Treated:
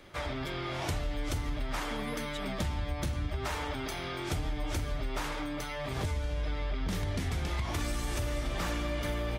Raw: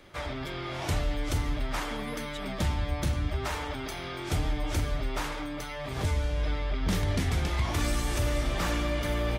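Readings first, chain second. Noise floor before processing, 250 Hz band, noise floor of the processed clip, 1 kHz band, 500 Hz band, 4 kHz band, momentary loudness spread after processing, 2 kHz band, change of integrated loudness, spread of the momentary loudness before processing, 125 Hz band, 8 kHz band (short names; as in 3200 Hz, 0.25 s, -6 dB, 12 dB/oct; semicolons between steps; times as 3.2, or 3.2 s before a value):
-37 dBFS, -3.5 dB, -37 dBFS, -2.5 dB, -3.0 dB, -3.0 dB, 2 LU, -3.0 dB, -3.5 dB, 7 LU, -4.5 dB, -3.5 dB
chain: compressor, threshold -29 dBFS, peak gain reduction 7 dB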